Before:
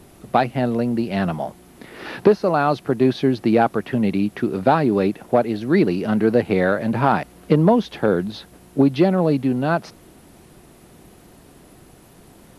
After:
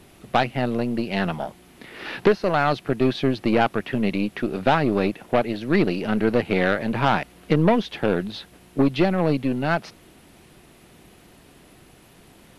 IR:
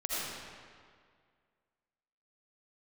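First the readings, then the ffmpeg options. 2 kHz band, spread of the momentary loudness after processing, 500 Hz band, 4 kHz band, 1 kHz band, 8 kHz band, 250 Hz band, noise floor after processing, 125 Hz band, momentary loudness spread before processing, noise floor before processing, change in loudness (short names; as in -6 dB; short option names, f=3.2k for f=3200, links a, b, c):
+1.5 dB, 7 LU, -3.5 dB, +3.0 dB, -2.5 dB, n/a, -3.5 dB, -52 dBFS, -3.0 dB, 7 LU, -49 dBFS, -3.0 dB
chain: -af "aeval=exprs='0.891*(cos(1*acos(clip(val(0)/0.891,-1,1)))-cos(1*PI/2))+0.0562*(cos(8*acos(clip(val(0)/0.891,-1,1)))-cos(8*PI/2))':c=same,equalizer=f=2.7k:w=0.84:g=7,volume=-4dB"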